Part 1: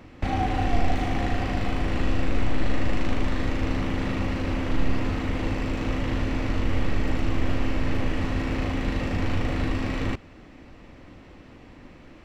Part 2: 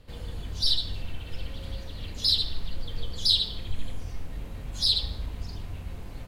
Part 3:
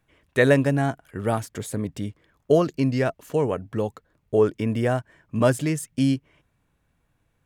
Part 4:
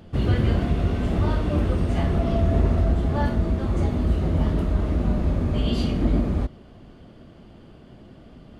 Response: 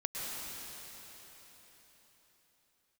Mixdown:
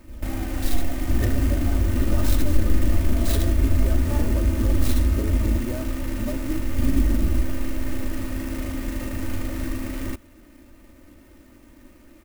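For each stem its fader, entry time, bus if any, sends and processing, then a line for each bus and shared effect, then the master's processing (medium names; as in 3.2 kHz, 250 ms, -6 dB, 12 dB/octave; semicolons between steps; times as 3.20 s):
-4.5 dB, 0.00 s, no send, none
-6.5 dB, 0.00 s, no send, tilt shelf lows +6 dB
-2.0 dB, 0.85 s, no send, low-pass that closes with the level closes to 410 Hz, closed at -14.5 dBFS; compression, threshold -28 dBFS, peak gain reduction 13.5 dB
-6.0 dB, 0.95 s, muted 5.61–6.78 s, no send, bass shelf 150 Hz +10.5 dB; peak limiter -11.5 dBFS, peak gain reduction 9 dB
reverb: none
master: peaking EQ 830 Hz -5 dB 0.8 oct; comb 3.3 ms, depth 72%; sampling jitter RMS 0.06 ms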